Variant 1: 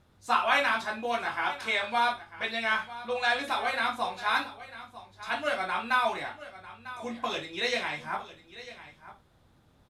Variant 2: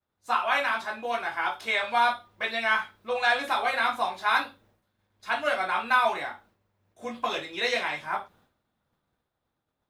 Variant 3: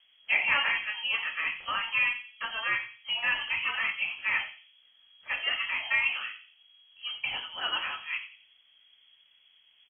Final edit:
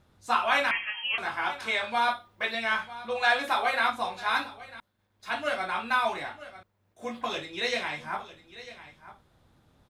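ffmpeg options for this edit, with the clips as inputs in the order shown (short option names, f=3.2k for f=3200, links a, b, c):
-filter_complex "[1:a]asplit=4[a][b][c][d];[0:a]asplit=6[e][f][g][h][i][j];[e]atrim=end=0.712[k];[2:a]atrim=start=0.708:end=1.182[l];[f]atrim=start=1.178:end=2.082[m];[a]atrim=start=2.078:end=2.552[n];[g]atrim=start=2.548:end=3.212[o];[b]atrim=start=3.208:end=3.902[p];[h]atrim=start=3.898:end=4.802[q];[c]atrim=start=4.798:end=5.292[r];[i]atrim=start=5.288:end=6.632[s];[d]atrim=start=6.628:end=7.212[t];[j]atrim=start=7.208[u];[k][l]acrossfade=d=0.004:c1=hsin:c2=hsin[v];[v][m]acrossfade=d=0.004:c1=hsin:c2=hsin[w];[w][n]acrossfade=d=0.004:c1=hsin:c2=hsin[x];[x][o]acrossfade=d=0.004:c1=hsin:c2=hsin[y];[y][p]acrossfade=d=0.004:c1=hsin:c2=hsin[z];[z][q]acrossfade=d=0.004:c1=hsin:c2=hsin[aa];[aa][r]acrossfade=d=0.004:c1=hsin:c2=hsin[ab];[ab][s]acrossfade=d=0.004:c1=hsin:c2=hsin[ac];[ac][t]acrossfade=d=0.004:c1=hsin:c2=hsin[ad];[ad][u]acrossfade=d=0.004:c1=hsin:c2=hsin"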